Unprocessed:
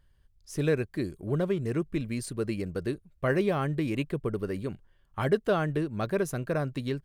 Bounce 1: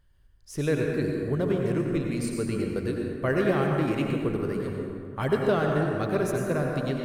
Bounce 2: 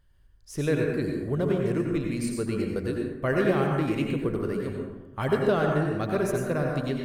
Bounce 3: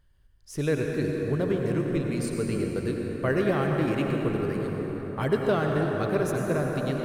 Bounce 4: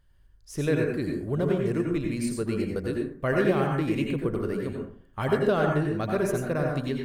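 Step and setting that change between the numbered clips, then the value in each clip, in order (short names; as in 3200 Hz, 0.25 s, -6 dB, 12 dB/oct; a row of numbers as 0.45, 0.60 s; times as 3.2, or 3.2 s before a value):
plate-style reverb, RT60: 2.3, 1.1, 5.3, 0.53 s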